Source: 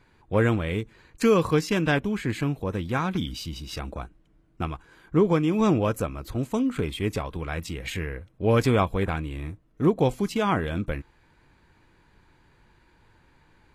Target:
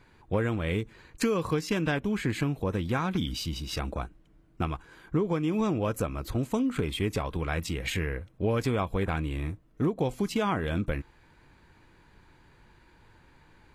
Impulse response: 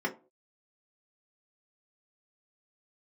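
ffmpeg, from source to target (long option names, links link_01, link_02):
-af "acompressor=threshold=-25dB:ratio=6,volume=1.5dB"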